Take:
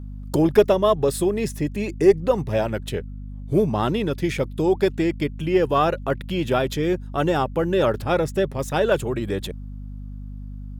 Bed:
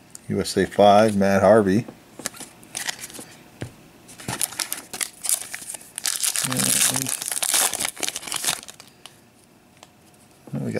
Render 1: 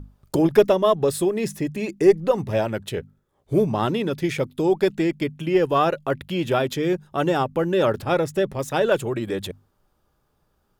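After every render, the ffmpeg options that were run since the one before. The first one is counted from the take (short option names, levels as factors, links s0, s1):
-af "bandreject=f=50:t=h:w=6,bandreject=f=100:t=h:w=6,bandreject=f=150:t=h:w=6,bandreject=f=200:t=h:w=6,bandreject=f=250:t=h:w=6"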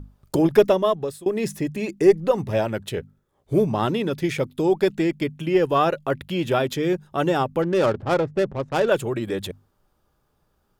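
-filter_complex "[0:a]asettb=1/sr,asplit=3[s0][s1][s2];[s0]atrim=end=7.624[s3];[s1]atrim=start=7.62:end=8.88,asetpts=PTS-STARTPTS,afade=t=in:d=0.004:c=qsin,afade=t=out:st=1.256:d=0.004:c=qsin,adynamicsmooth=sensitivity=3:basefreq=530[s4];[s2]atrim=start=8.876[s5];[s3][s4]acrossfade=d=0.004:c1=hsin:c2=qsin[s6];[s6][s5]acrossfade=d=0.004:c1=qsin:c2=hsin,asplit=2[s7][s8];[s7]atrim=end=1.26,asetpts=PTS-STARTPTS,afade=t=out:st=0.75:d=0.51:silence=0.0630957[s9];[s8]atrim=start=1.26,asetpts=PTS-STARTPTS,afade=t=in:d=0.004:c=hsin:silence=0.0630957[s10];[s9][s10]concat=n=2:v=0:a=1"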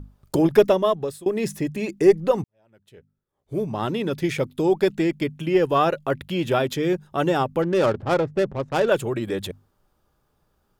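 -filter_complex "[0:a]asplit=2[s0][s1];[s0]atrim=end=2.44,asetpts=PTS-STARTPTS,afade=t=out:st=2.436:d=0.004:c=hsin[s2];[s1]atrim=start=2.44,asetpts=PTS-STARTPTS,afade=t=in:d=1.7:c=qua[s3];[s2][s3]concat=n=2:v=0:a=1"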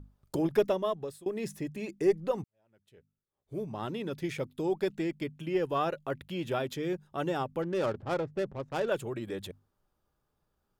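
-af "volume=0.299"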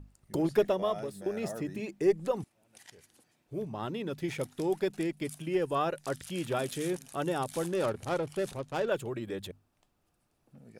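-filter_complex "[1:a]volume=0.0473[s0];[0:a][s0]amix=inputs=2:normalize=0"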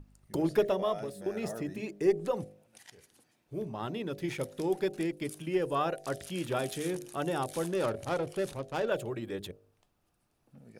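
-af "equalizer=f=7600:w=6.7:g=-2.5,bandreject=f=50.95:t=h:w=4,bandreject=f=101.9:t=h:w=4,bandreject=f=152.85:t=h:w=4,bandreject=f=203.8:t=h:w=4,bandreject=f=254.75:t=h:w=4,bandreject=f=305.7:t=h:w=4,bandreject=f=356.65:t=h:w=4,bandreject=f=407.6:t=h:w=4,bandreject=f=458.55:t=h:w=4,bandreject=f=509.5:t=h:w=4,bandreject=f=560.45:t=h:w=4,bandreject=f=611.4:t=h:w=4,bandreject=f=662.35:t=h:w=4,bandreject=f=713.3:t=h:w=4,bandreject=f=764.25:t=h:w=4"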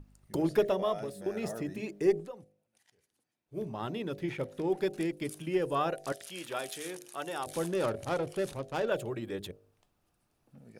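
-filter_complex "[0:a]asettb=1/sr,asplit=3[s0][s1][s2];[s0]atrim=end=4.174[s3];[s1]atrim=start=4.17:end=4.8,asetpts=PTS-STARTPTS,afade=t=in:d=0.004:c=qsin,afade=t=out:st=0.626:d=0.004:c=qsin,acrossover=split=3200[s4][s5];[s5]acompressor=threshold=0.00112:ratio=4:attack=1:release=60[s6];[s4][s6]amix=inputs=2:normalize=0[s7];[s2]atrim=start=4.796[s8];[s3][s7]acrossfade=d=0.004:c1=hsin:c2=qsin[s9];[s9][s8]acrossfade=d=0.004:c1=qsin:c2=hsin,asettb=1/sr,asplit=3[s10][s11][s12];[s10]atrim=end=6.124[s13];[s11]atrim=start=6.12:end=7.47,asetpts=PTS-STARTPTS,afade=t=in:d=0.004:c=qsin,afade=t=out:st=1.346:d=0.004:c=qsin,highpass=f=850:p=1[s14];[s12]atrim=start=7.466[s15];[s13][s14]acrossfade=d=0.004:c1=hsin:c2=qsin[s16];[s16][s15]acrossfade=d=0.004:c1=qsin:c2=hsin,asplit=3[s17][s18][s19];[s17]atrim=end=2.65,asetpts=PTS-STARTPTS,afade=t=out:st=2.2:d=0.45:c=exp:silence=0.16788[s20];[s18]atrim=start=2.65:end=3.13,asetpts=PTS-STARTPTS,volume=0.168[s21];[s19]atrim=start=3.13,asetpts=PTS-STARTPTS,afade=t=in:d=0.45:c=exp:silence=0.16788[s22];[s20][s21][s22]concat=n=3:v=0:a=1"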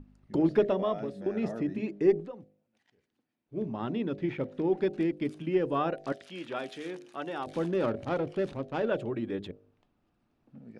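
-af "lowpass=3400,equalizer=f=250:t=o:w=0.82:g=8.5"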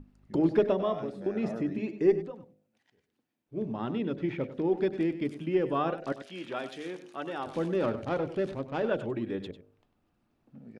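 -af "aecho=1:1:98:0.237"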